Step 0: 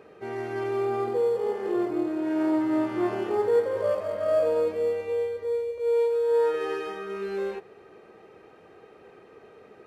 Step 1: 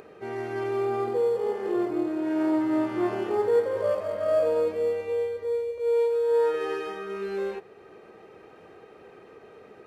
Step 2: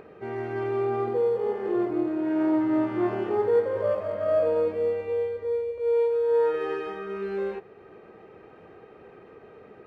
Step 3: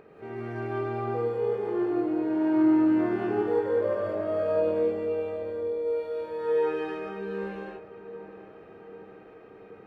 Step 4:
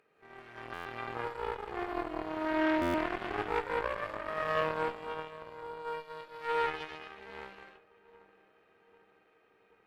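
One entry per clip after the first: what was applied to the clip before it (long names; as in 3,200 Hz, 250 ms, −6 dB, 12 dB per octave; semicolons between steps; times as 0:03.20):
upward compression, threshold −44 dBFS
bass and treble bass +4 dB, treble −13 dB
feedback echo with a low-pass in the loop 784 ms, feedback 57%, low-pass 2,000 Hz, level −14 dB; reverb whose tail is shaped and stops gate 220 ms rising, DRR −3 dB; level −6 dB
harmonic generator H 4 −11 dB, 7 −20 dB, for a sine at −13 dBFS; tilt shelving filter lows −8.5 dB; buffer that repeats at 0:00.73/0:02.81, samples 512, times 10; level −4.5 dB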